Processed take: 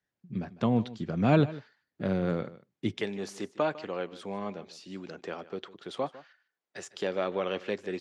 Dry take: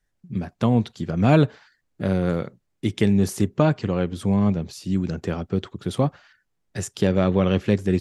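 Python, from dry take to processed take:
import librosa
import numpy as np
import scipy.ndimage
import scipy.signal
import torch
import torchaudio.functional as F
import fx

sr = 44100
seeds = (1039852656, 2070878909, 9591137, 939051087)

y = fx.bandpass_edges(x, sr, low_hz=fx.steps((0.0, 130.0), (2.97, 450.0)), high_hz=5200.0)
y = y + 10.0 ** (-18.0 / 20.0) * np.pad(y, (int(152 * sr / 1000.0), 0))[:len(y)]
y = y * librosa.db_to_amplitude(-5.5)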